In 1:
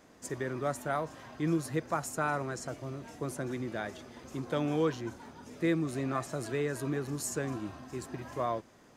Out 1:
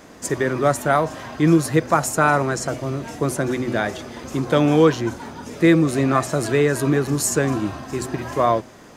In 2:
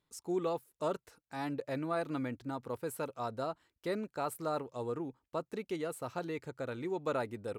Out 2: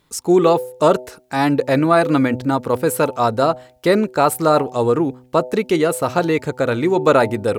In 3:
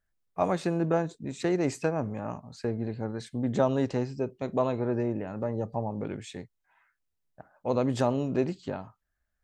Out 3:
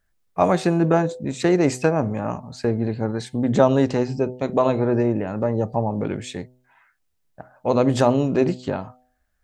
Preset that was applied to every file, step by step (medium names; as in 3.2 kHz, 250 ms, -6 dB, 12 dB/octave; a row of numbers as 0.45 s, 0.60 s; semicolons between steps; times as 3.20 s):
de-hum 126.1 Hz, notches 7; peak normalisation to -2 dBFS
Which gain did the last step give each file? +14.5 dB, +21.0 dB, +9.0 dB